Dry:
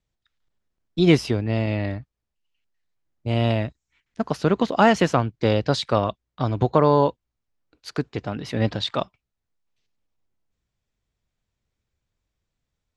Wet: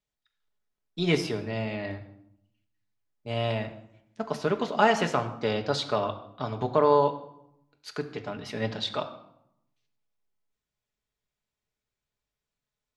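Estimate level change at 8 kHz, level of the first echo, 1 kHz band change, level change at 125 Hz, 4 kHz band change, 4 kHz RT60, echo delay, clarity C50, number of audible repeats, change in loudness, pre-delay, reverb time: -4.0 dB, no echo, -3.5 dB, -10.5 dB, -4.0 dB, 0.55 s, no echo, 12.0 dB, no echo, -5.5 dB, 5 ms, 0.80 s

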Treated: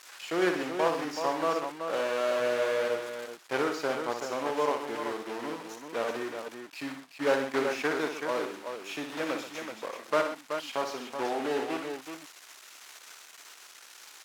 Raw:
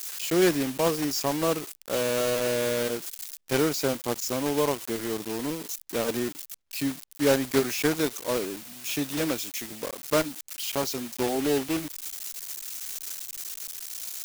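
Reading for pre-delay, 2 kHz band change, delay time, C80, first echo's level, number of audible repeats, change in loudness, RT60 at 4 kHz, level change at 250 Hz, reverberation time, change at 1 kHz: no reverb, 0.0 dB, 60 ms, no reverb, -7.0 dB, 3, -3.5 dB, no reverb, -7.0 dB, no reverb, +2.0 dB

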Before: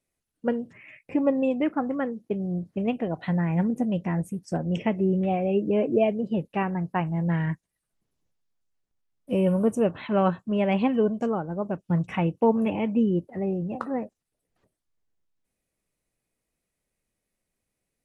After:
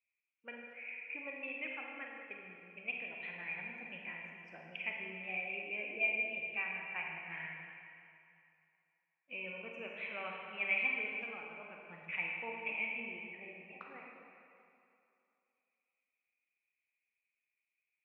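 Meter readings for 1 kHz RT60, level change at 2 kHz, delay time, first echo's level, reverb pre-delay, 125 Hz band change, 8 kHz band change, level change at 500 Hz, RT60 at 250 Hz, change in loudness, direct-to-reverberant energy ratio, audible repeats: 2.7 s, +2.5 dB, no echo, no echo, 34 ms, -32.5 dB, no reading, -23.5 dB, 2.5 s, -13.5 dB, -1.0 dB, no echo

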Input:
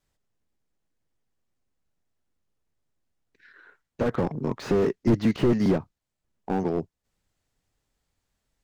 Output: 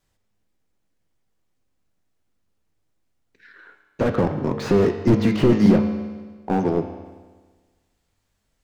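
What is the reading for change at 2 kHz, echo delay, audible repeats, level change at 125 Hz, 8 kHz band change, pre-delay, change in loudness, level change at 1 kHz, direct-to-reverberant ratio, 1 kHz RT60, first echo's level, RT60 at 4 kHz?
+5.5 dB, no echo, no echo, +6.0 dB, no reading, 4 ms, +5.5 dB, +5.5 dB, 5.0 dB, 1.4 s, no echo, 1.4 s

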